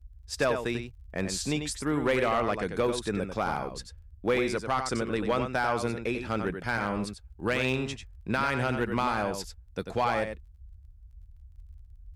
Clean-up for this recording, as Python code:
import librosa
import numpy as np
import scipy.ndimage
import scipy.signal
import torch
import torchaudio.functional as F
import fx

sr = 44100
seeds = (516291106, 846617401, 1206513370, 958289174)

y = fx.fix_declip(x, sr, threshold_db=-18.5)
y = fx.fix_declick_ar(y, sr, threshold=6.5)
y = fx.noise_reduce(y, sr, print_start_s=10.52, print_end_s=11.02, reduce_db=25.0)
y = fx.fix_echo_inverse(y, sr, delay_ms=93, level_db=-7.5)